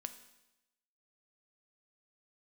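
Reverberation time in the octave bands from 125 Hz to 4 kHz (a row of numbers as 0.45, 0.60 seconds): 0.95, 0.95, 0.95, 0.95, 0.95, 0.95 seconds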